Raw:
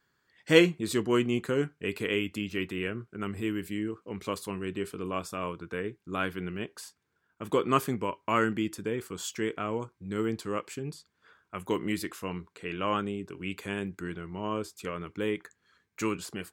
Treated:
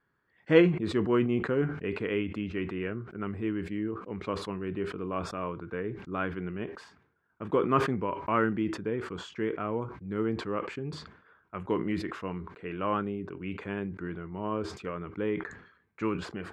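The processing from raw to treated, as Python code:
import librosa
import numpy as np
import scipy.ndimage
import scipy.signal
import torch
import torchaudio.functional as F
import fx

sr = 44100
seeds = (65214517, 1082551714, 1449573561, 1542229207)

y = scipy.signal.sosfilt(scipy.signal.butter(2, 1800.0, 'lowpass', fs=sr, output='sos'), x)
y = fx.sustainer(y, sr, db_per_s=84.0)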